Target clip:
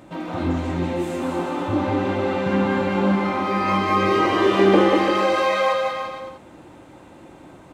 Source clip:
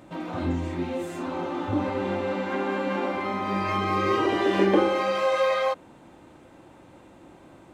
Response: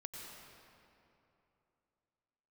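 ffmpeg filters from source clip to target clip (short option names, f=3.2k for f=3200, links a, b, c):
-filter_complex "[0:a]asettb=1/sr,asplit=3[a][b][c];[a]atrim=end=2.464[d];[b]atrim=start=2.46:end=3.01,asetpts=PTS-STARTPTS,afade=t=in:d=0.004:c=qsin,afade=t=out:st=0.546:d=0.004:c=qsin,lowshelf=f=220:t=q:w=1.5:g=13.5[e];[c]atrim=start=3.006[f];[d][e]acrossfade=d=0.004:c1=hsin:c2=qsin[g];[g][f]acrossfade=d=0.004:c1=qsin:c2=hsin,aecho=1:1:190|342|463.6|560.9|638.7:0.631|0.398|0.251|0.158|0.1,volume=3.5dB"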